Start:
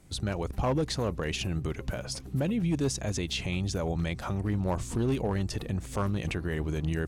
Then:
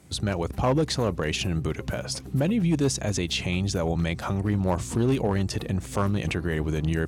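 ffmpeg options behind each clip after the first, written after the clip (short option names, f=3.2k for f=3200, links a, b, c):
-af "highpass=70,volume=5dB"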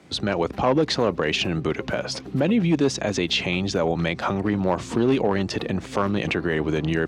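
-filter_complex "[0:a]acrossover=split=190 5300:gain=0.2 1 0.1[a][b][c];[a][b][c]amix=inputs=3:normalize=0,asplit=2[d][e];[e]alimiter=limit=-19.5dB:level=0:latency=1:release=98,volume=2dB[f];[d][f]amix=inputs=2:normalize=0"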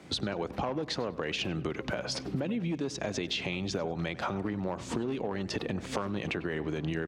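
-filter_complex "[0:a]acompressor=threshold=-29dB:ratio=12,asplit=2[a][b];[b]adelay=98,lowpass=f=2.4k:p=1,volume=-16dB,asplit=2[c][d];[d]adelay=98,lowpass=f=2.4k:p=1,volume=0.49,asplit=2[e][f];[f]adelay=98,lowpass=f=2.4k:p=1,volume=0.49,asplit=2[g][h];[h]adelay=98,lowpass=f=2.4k:p=1,volume=0.49[i];[a][c][e][g][i]amix=inputs=5:normalize=0"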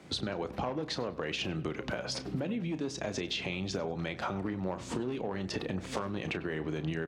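-filter_complex "[0:a]asplit=2[a][b];[b]adelay=32,volume=-12dB[c];[a][c]amix=inputs=2:normalize=0,volume=-2dB"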